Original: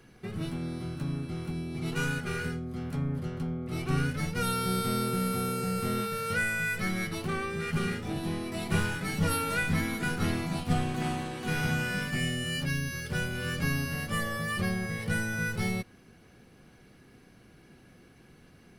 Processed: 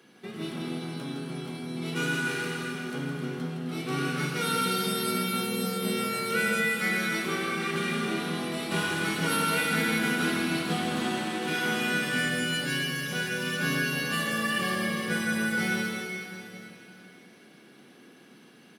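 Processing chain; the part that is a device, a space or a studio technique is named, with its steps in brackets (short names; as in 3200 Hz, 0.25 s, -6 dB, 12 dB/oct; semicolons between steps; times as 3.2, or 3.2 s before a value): stadium PA (HPF 190 Hz 24 dB/oct; bell 3400 Hz +6.5 dB 0.39 oct; loudspeakers at several distances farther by 56 m -6 dB, 90 m -10 dB; reverb RT60 3.3 s, pre-delay 28 ms, DRR 0.5 dB)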